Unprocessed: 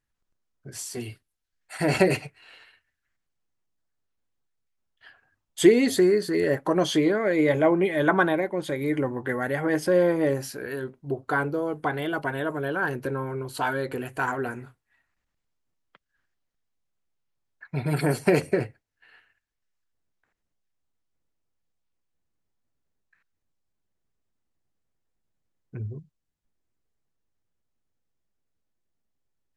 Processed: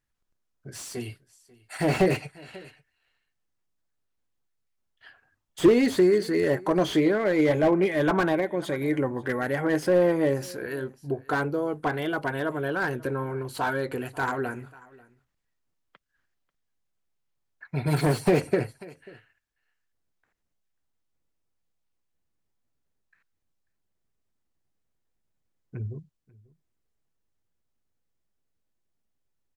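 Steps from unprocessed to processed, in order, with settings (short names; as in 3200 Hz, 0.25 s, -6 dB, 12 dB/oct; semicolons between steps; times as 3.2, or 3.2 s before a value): 17.87–18.31 fifteen-band EQ 100 Hz +6 dB, 1000 Hz +4 dB, 4000 Hz +8 dB, 10000 Hz +6 dB; echo 0.54 s -23.5 dB; slew limiter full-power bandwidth 91 Hz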